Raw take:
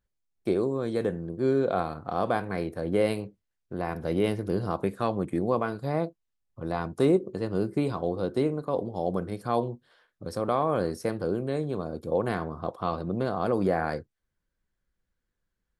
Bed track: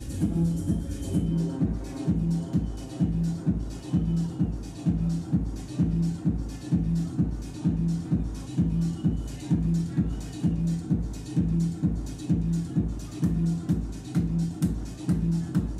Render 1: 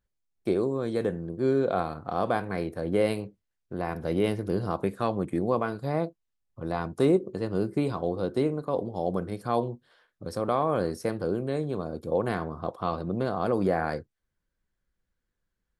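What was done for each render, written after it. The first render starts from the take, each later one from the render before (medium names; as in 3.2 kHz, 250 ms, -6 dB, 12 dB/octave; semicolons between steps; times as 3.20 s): no audible change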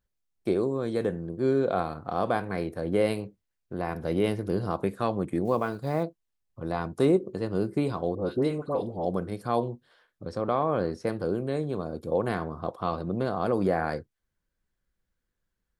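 5.45–6.05 s: block-companded coder 7-bit; 8.15–9.05 s: phase dispersion highs, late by 82 ms, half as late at 1.3 kHz; 10.25–11.07 s: distance through air 98 m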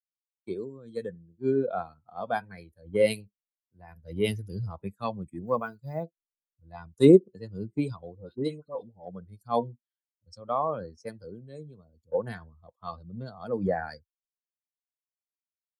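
expander on every frequency bin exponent 2; three bands expanded up and down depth 100%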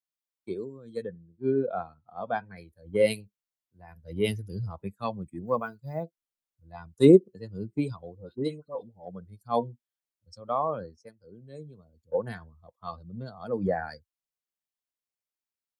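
1.02–2.56 s: distance through air 190 m; 10.79–11.55 s: dip -18 dB, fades 0.36 s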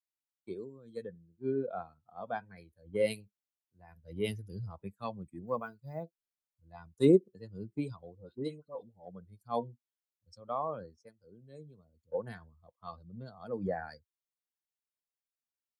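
trim -7 dB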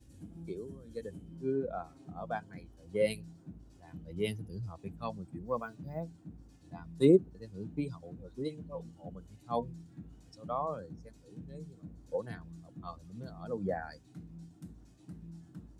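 add bed track -23 dB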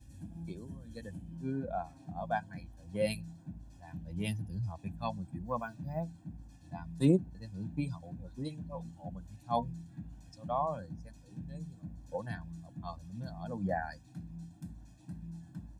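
comb 1.2 ms, depth 79%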